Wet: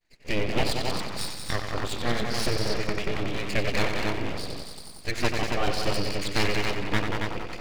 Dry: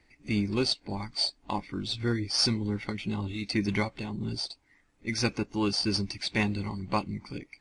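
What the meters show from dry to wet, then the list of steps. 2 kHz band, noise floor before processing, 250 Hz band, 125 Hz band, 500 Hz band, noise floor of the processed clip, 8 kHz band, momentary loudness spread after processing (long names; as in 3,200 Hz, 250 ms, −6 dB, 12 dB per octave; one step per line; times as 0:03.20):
+6.0 dB, −68 dBFS, −2.0 dB, +1.0 dB, +6.0 dB, −42 dBFS, +2.0 dB, 7 LU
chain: low-pass filter 3,900 Hz 12 dB per octave
downward expander −55 dBFS
high-shelf EQ 2,600 Hz +10.5 dB
echo machine with several playback heads 92 ms, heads all three, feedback 41%, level −7 dB
treble cut that deepens with the level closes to 2,600 Hz, closed at −30 dBFS
full-wave rectification
level +4 dB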